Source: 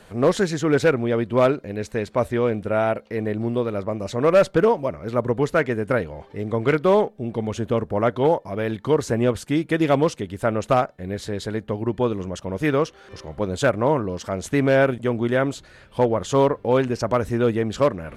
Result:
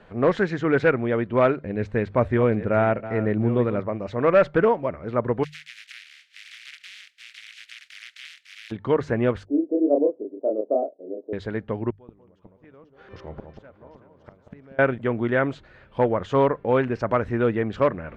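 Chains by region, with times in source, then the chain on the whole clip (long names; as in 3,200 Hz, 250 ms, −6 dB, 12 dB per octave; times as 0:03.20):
0:01.62–0:03.80: delay that plays each chunk backwards 681 ms, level −13 dB + low-shelf EQ 290 Hz +7.5 dB
0:05.43–0:08.70: compressing power law on the bin magnitudes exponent 0.18 + inverse Chebyshev high-pass filter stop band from 1,000 Hz + downward compressor, threshold −28 dBFS
0:09.45–0:11.33: elliptic band-pass filter 280–640 Hz, stop band 60 dB + double-tracking delay 28 ms −2.5 dB
0:11.90–0:14.79: low-pass filter 9,400 Hz + gate with flip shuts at −22 dBFS, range −28 dB + delay that swaps between a low-pass and a high-pass 187 ms, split 1,100 Hz, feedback 64%, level −6.5 dB
whole clip: low-pass filter 2,500 Hz 12 dB per octave; dynamic equaliser 1,800 Hz, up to +5 dB, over −39 dBFS, Q 1.2; mains-hum notches 50/100/150 Hz; level −2 dB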